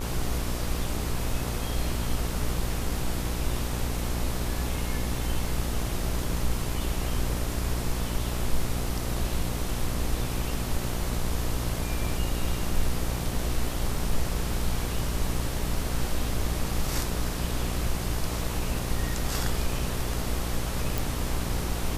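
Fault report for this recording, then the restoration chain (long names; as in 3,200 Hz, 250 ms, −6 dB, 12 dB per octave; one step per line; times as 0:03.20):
mains buzz 60 Hz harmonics 22 −32 dBFS
0:20.98: click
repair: click removal
hum removal 60 Hz, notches 22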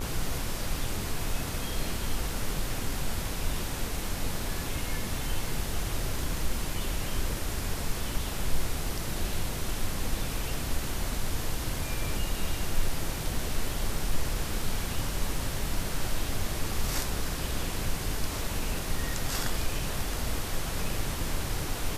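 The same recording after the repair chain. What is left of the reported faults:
none of them is left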